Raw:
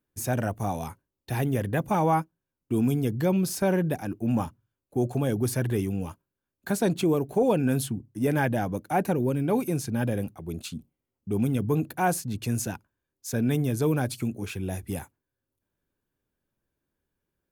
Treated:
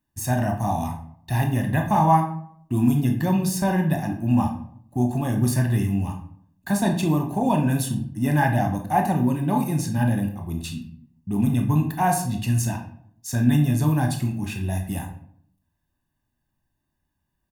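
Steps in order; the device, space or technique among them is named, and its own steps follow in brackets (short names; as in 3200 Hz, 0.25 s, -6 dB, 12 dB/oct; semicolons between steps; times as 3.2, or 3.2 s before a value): microphone above a desk (comb 1.1 ms, depth 86%; reverb RT60 0.65 s, pre-delay 17 ms, DRR 2.5 dB)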